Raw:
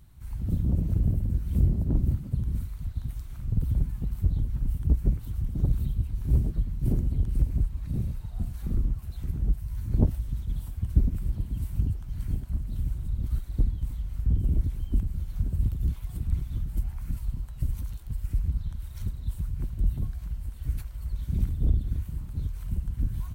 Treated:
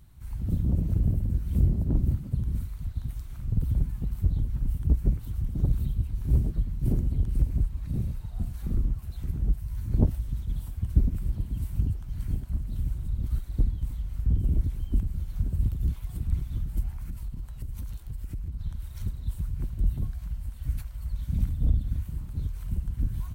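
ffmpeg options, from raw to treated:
-filter_complex "[0:a]asplit=3[s0][s1][s2];[s0]afade=t=out:st=16.94:d=0.02[s3];[s1]acompressor=threshold=0.0316:ratio=6:attack=3.2:release=140:knee=1:detection=peak,afade=t=in:st=16.94:d=0.02,afade=t=out:st=18.59:d=0.02[s4];[s2]afade=t=in:st=18.59:d=0.02[s5];[s3][s4][s5]amix=inputs=3:normalize=0,asettb=1/sr,asplit=3[s6][s7][s8];[s6]atrim=end=20.104[s9];[s7]atrim=start=20.1:end=22.05,asetpts=PTS-STARTPTS,afade=t=in:d=0.004:c=qsin,afade=t=out:st=1.946:d=0.004:c=qsin,equalizer=f=380:t=o:w=0.24:g=-15[s10];[s8]atrim=start=22.046[s11];[s9][s10]acrossfade=d=0.004:c1=hsin:c2=qsin[s12];[s12][s11]acrossfade=d=0.004:c1=qsin:c2=hsin"

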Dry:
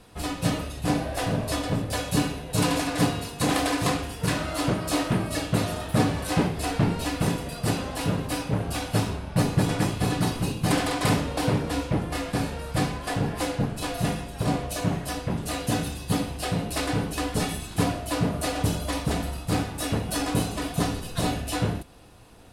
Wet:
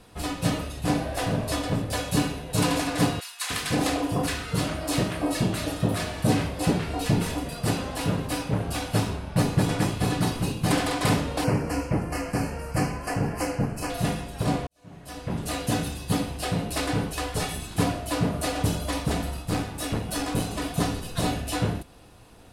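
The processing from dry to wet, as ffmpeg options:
-filter_complex "[0:a]asettb=1/sr,asplit=3[s0][s1][s2];[s0]atrim=end=3.204[s3];[s1]atrim=start=3.2:end=7.44,asetpts=PTS-STARTPTS,afade=t=in:d=0.004:c=qsin,afade=t=out:st=4.236:d=0.004:c=qsin,acrossover=split=1100[s4][s5];[s4]adelay=300[s6];[s6][s5]amix=inputs=2:normalize=0,atrim=end_sample=186984[s7];[s2]atrim=start=7.436[s8];[s3][s7]acrossfade=d=0.004:c1=hsin:c2=qsin[s9];[s9][s8]acrossfade=d=0.004:c1=qsin:c2=hsin,asettb=1/sr,asplit=3[s10][s11][s12];[s10]atrim=end=11.444[s13];[s11]atrim=start=11.44:end=13.9,asetpts=PTS-STARTPTS,afade=t=in:d=0.004:c=qsin,afade=t=out:st=2.456:d=0.004:c=qsin,asuperstop=centerf=3600:order=4:qfactor=2.1[s14];[s12]atrim=start=13.896[s15];[s13][s14]acrossfade=d=0.004:c1=hsin:c2=qsin[s16];[s16][s15]acrossfade=d=0.004:c1=qsin:c2=hsin,asettb=1/sr,asplit=3[s17][s18][s19];[s17]atrim=end=17.094[s20];[s18]atrim=start=17.09:end=17.56,asetpts=PTS-STARTPTS,afade=t=in:d=0.004:c=qsin,afade=t=out:st=0.466:d=0.004:c=qsin,equalizer=f=240:t=o:w=0.77:g=-10.5[s21];[s19]atrim=start=17.556[s22];[s20][s21]acrossfade=d=0.004:c1=hsin:c2=qsin[s23];[s23][s22]acrossfade=d=0.004:c1=qsin:c2=hsin,asettb=1/sr,asplit=3[s24][s25][s26];[s24]atrim=end=19.424[s27];[s25]atrim=start=19.42:end=20.51,asetpts=PTS-STARTPTS,afade=t=in:d=0.004:c=qsin,afade=t=out:st=1.086:d=0.004:c=qsin,aeval=exprs='(tanh(6.31*val(0)+0.4)-tanh(0.4))/6.31':c=same[s28];[s26]atrim=start=20.506[s29];[s27][s28]acrossfade=d=0.004:c1=hsin:c2=qsin[s30];[s30][s29]acrossfade=d=0.004:c1=qsin:c2=hsin,asplit=2[s31][s32];[s31]atrim=end=14.67,asetpts=PTS-STARTPTS,afade=t=out:st=14.666:d=0.004:c=hsin[s33];[s32]atrim=start=14.67,asetpts=PTS-STARTPTS,afade=t=in:d=0.72:c=qua[s34];[s33][s34]concat=n=2:v=0:a=1"

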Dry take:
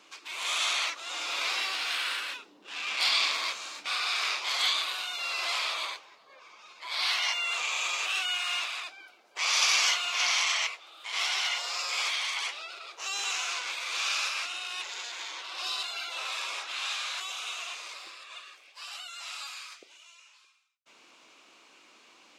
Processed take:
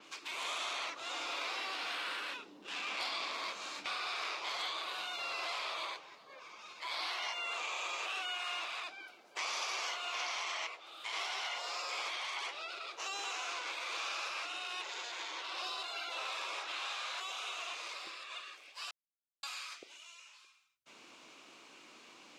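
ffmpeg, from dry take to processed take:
-filter_complex "[0:a]asplit=3[s0][s1][s2];[s0]atrim=end=18.91,asetpts=PTS-STARTPTS,afade=t=out:st=18.906:d=0.004:c=hsin[s3];[s1]atrim=start=18.91:end=19.43,asetpts=PTS-STARTPTS,volume=0[s4];[s2]atrim=start=19.43,asetpts=PTS-STARTPTS,afade=t=in:d=0.004:c=hsin[s5];[s3][s4][s5]concat=n=3:v=0:a=1,lowshelf=f=280:g=7.5,acrossover=split=580|1200[s6][s7][s8];[s6]acompressor=threshold=0.00251:ratio=4[s9];[s7]acompressor=threshold=0.00631:ratio=4[s10];[s8]acompressor=threshold=0.01:ratio=4[s11];[s9][s10][s11]amix=inputs=3:normalize=0,adynamicequalizer=threshold=0.002:dfrequency=6000:dqfactor=0.7:tfrequency=6000:tqfactor=0.7:attack=5:release=100:ratio=0.375:range=2.5:mode=cutabove:tftype=highshelf"

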